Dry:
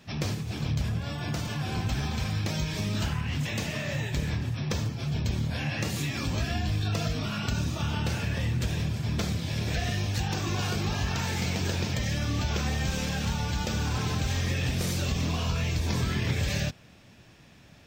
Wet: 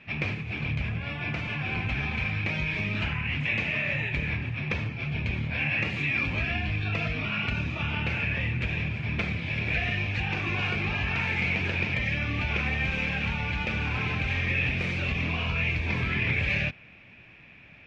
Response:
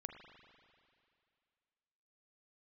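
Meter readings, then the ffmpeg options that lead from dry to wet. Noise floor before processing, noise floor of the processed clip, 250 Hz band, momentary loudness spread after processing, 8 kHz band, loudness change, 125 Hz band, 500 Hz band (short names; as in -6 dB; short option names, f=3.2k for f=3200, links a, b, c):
-53 dBFS, -51 dBFS, -2.0 dB, 5 LU, under -15 dB, +2.0 dB, -2.0 dB, -1.5 dB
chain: -af "lowpass=f=2.4k:t=q:w=6.4,volume=-2dB"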